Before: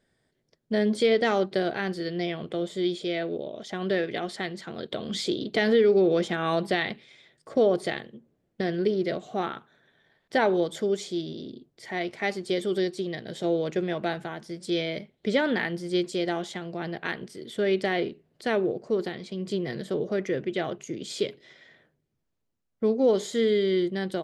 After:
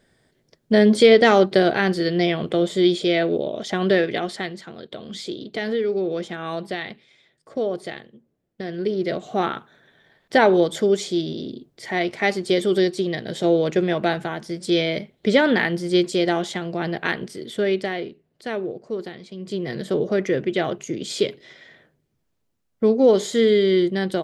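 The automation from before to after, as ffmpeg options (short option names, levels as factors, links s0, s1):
-af "volume=26.6,afade=t=out:st=3.73:d=1.07:silence=0.237137,afade=t=in:st=8.67:d=0.82:silence=0.298538,afade=t=out:st=17.28:d=0.71:silence=0.334965,afade=t=in:st=19.39:d=0.54:silence=0.375837"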